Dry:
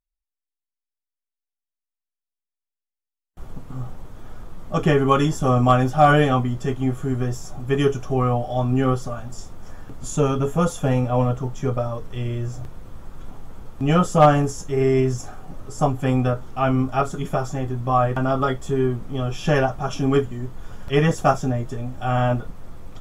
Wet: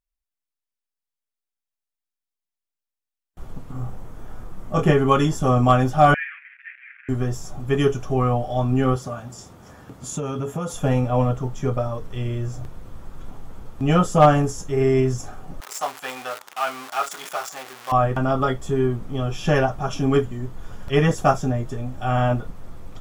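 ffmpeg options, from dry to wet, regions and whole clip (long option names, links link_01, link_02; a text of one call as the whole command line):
ffmpeg -i in.wav -filter_complex "[0:a]asettb=1/sr,asplit=3[link_01][link_02][link_03];[link_01]atrim=end=3.724[link_04];[link_02]atrim=start=3.72:end=4.91,asetpts=PTS-STARTPTS,afade=type=in:duration=0.004:curve=qsin,afade=type=out:start_time=1.186:duration=0.004:curve=qsin,equalizer=frequency=3800:width=1.2:gain=-4.5,asplit=2[link_05][link_06];[link_06]adelay=26,volume=-4.5dB[link_07];[link_05][link_07]amix=inputs=2:normalize=0,atrim=end_sample=52479[link_08];[link_03]atrim=start=4.906[link_09];[link_04][link_08]acrossfade=duration=0.004:curve1=hsin:curve2=qsin[link_10];[link_10][link_09]acrossfade=duration=0.004:curve1=qsin:curve2=hsin,asettb=1/sr,asplit=3[link_11][link_12][link_13];[link_11]atrim=end=6.144[link_14];[link_12]atrim=start=6.14:end=7.09,asetpts=PTS-STARTPTS,afade=type=in:duration=0.004:curve=qsin,afade=type=out:start_time=0.946:duration=0.004:curve=qsin,aeval=exprs='val(0)+0.5*0.0531*sgn(val(0))':channel_layout=same,asuperpass=centerf=2000:order=8:qfactor=2.1,asplit=2[link_15][link_16];[link_16]adelay=17,volume=-12.5dB[link_17];[link_15][link_17]amix=inputs=2:normalize=0,atrim=end_sample=41895[link_18];[link_13]atrim=start=7.086[link_19];[link_14][link_18]acrossfade=duration=0.004:curve1=hsin:curve2=qsin[link_20];[link_20][link_19]acrossfade=duration=0.004:curve1=qsin:curve2=hsin,asettb=1/sr,asplit=3[link_21][link_22][link_23];[link_21]atrim=end=8.964[link_24];[link_22]atrim=start=8.96:end=10.74,asetpts=PTS-STARTPTS,afade=type=in:duration=0.004:curve=qsin,afade=type=out:start_time=1.776:duration=0.004:curve=qsin,highpass=98,acompressor=threshold=-22dB:ratio=12:attack=3.2:release=140:knee=1:detection=peak[link_25];[link_23]atrim=start=10.736[link_26];[link_24][link_25]acrossfade=duration=0.004:curve1=hsin:curve2=qsin[link_27];[link_27][link_26]acrossfade=duration=0.004:curve1=qsin:curve2=hsin,asettb=1/sr,asplit=3[link_28][link_29][link_30];[link_28]atrim=end=15.604[link_31];[link_29]atrim=start=15.6:end=17.92,asetpts=PTS-STARTPTS,afade=type=in:duration=0.004:curve=qsin,afade=type=out:start_time=2.316:duration=0.004:curve=qsin,aeval=exprs='val(0)+0.5*0.0501*sgn(val(0))':channel_layout=same,highpass=960[link_32];[link_30]atrim=start=17.916[link_33];[link_31][link_32]acrossfade=duration=0.004:curve1=hsin:curve2=qsin[link_34];[link_34][link_33]acrossfade=duration=0.004:curve1=qsin:curve2=hsin" out.wav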